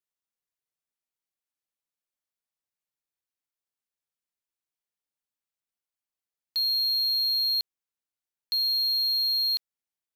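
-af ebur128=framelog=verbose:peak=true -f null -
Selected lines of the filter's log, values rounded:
Integrated loudness:
  I:         -23.3 LUFS
  Threshold: -33.4 LUFS
Loudness range:
  LRA:         7.6 LU
  Threshold: -46.1 LUFS
  LRA low:   -31.5 LUFS
  LRA high:  -23.9 LUFS
True peak:
  Peak:      -20.5 dBFS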